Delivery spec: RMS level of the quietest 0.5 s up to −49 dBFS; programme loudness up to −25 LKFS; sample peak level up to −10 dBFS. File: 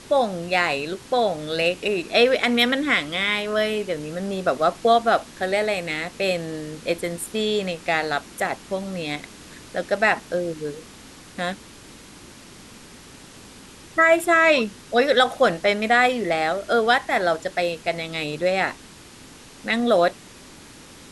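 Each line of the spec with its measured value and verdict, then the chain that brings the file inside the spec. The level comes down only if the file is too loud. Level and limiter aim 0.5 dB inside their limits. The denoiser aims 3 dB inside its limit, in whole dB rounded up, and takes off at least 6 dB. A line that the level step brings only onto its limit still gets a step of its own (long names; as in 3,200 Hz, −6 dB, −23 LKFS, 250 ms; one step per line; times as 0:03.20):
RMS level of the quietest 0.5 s −45 dBFS: out of spec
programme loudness −22.0 LKFS: out of spec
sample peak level −5.5 dBFS: out of spec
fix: broadband denoise 6 dB, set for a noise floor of −45 dBFS
level −3.5 dB
brickwall limiter −10.5 dBFS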